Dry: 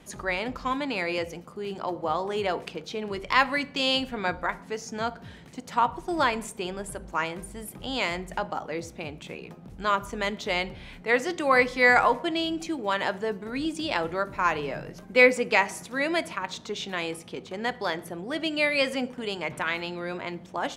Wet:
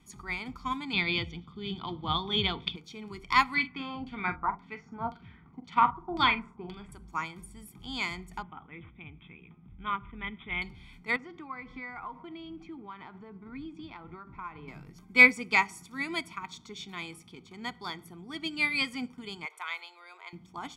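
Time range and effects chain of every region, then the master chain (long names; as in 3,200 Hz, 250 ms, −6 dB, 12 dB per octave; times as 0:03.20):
0:00.93–0:02.76: low-pass with resonance 3,500 Hz, resonance Q 9.5 + low-shelf EQ 210 Hz +11.5 dB
0:03.54–0:06.92: auto-filter low-pass saw down 1.9 Hz 650–4,000 Hz + double-tracking delay 44 ms −9.5 dB
0:08.42–0:10.62: bad sample-rate conversion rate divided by 6×, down none, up filtered + Chebyshev low-pass with heavy ripple 7,400 Hz, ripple 6 dB + low-shelf EQ 240 Hz +7.5 dB
0:11.16–0:14.68: low-pass filter 2,000 Hz + downward compressor 3 to 1, threshold −30 dBFS
0:19.45–0:20.33: Chebyshev high-pass filter 430 Hz, order 5 + parametric band 5,300 Hz −3.5 dB 0.23 octaves
whole clip: parametric band 780 Hz −3.5 dB 2.3 octaves; comb filter 0.9 ms, depth 90%; expander for the loud parts 1.5 to 1, over −35 dBFS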